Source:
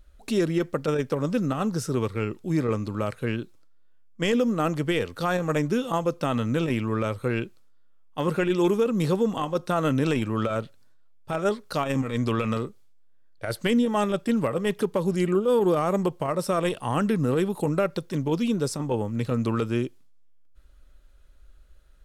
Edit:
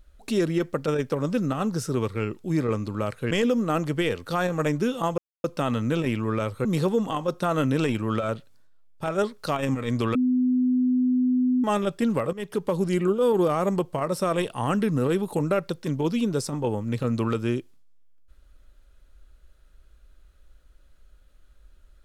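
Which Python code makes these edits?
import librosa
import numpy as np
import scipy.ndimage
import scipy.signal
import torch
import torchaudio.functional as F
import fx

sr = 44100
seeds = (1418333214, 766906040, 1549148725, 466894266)

y = fx.edit(x, sr, fx.cut(start_s=3.31, length_s=0.9),
    fx.insert_silence(at_s=6.08, length_s=0.26),
    fx.cut(start_s=7.29, length_s=1.63),
    fx.bleep(start_s=12.42, length_s=1.49, hz=252.0, db=-18.5),
    fx.fade_in_from(start_s=14.6, length_s=0.33, floor_db=-14.0), tone=tone)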